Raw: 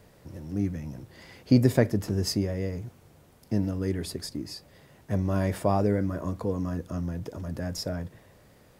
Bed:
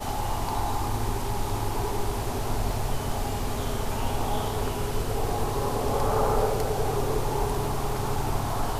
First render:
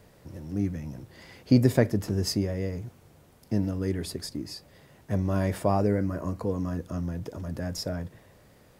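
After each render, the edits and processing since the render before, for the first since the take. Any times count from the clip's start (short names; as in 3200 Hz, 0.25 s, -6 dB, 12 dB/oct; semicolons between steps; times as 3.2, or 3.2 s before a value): 5.69–6.45 Butterworth band-stop 3500 Hz, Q 7.2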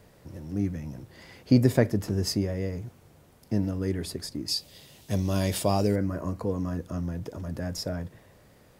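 4.48–5.96 resonant high shelf 2400 Hz +10.5 dB, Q 1.5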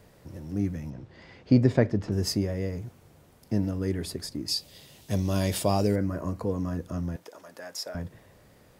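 0.9–2.12 air absorption 130 m; 7.16–7.95 HPF 660 Hz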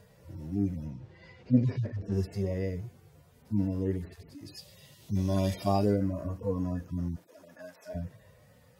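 median-filter separation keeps harmonic; dynamic EQ 130 Hz, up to -4 dB, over -39 dBFS, Q 1.9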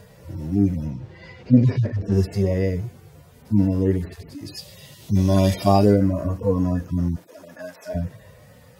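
gain +10.5 dB; limiter -3 dBFS, peak gain reduction 2.5 dB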